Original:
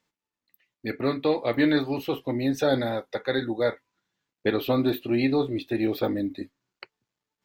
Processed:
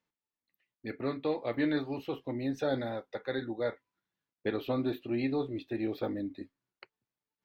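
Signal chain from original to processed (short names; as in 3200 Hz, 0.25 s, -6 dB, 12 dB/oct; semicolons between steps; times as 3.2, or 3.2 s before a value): LPF 3500 Hz 6 dB/oct; gain -8 dB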